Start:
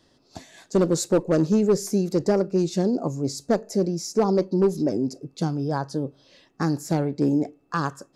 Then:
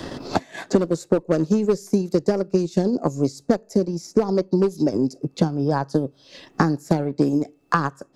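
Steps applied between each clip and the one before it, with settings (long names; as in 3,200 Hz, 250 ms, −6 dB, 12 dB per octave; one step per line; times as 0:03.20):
transient designer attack +6 dB, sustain −8 dB
multiband upward and downward compressor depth 100%
level −1 dB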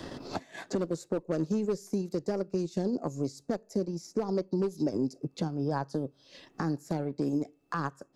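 brickwall limiter −11.5 dBFS, peak gain reduction 9 dB
level −8.5 dB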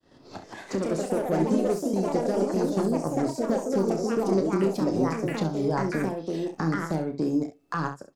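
fade in at the beginning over 0.94 s
delay with pitch and tempo change per echo 229 ms, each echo +3 semitones, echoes 3
ambience of single reflections 31 ms −8 dB, 67 ms −10.5 dB
level +3 dB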